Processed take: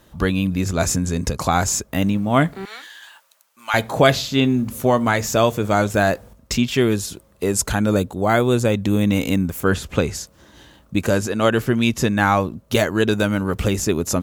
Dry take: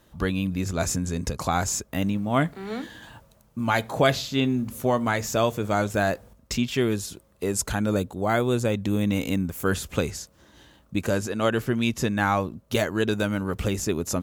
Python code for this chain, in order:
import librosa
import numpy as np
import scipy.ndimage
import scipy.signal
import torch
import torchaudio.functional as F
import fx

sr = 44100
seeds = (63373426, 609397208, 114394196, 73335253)

y = fx.highpass(x, sr, hz=1400.0, slope=12, at=(2.65, 3.74))
y = fx.high_shelf(y, sr, hz=6600.0, db=-11.0, at=(9.6, 10.11))
y = y * 10.0 ** (6.0 / 20.0)